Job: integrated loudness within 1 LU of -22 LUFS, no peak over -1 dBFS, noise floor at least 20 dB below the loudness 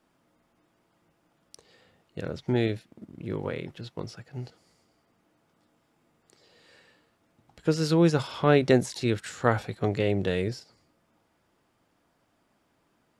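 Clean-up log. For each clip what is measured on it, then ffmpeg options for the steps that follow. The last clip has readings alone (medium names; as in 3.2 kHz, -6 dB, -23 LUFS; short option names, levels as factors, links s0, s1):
loudness -27.0 LUFS; peak level -6.5 dBFS; loudness target -22.0 LUFS
-> -af "volume=1.78"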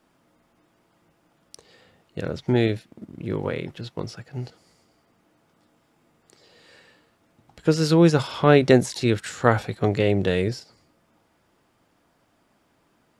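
loudness -22.0 LUFS; peak level -1.5 dBFS; noise floor -66 dBFS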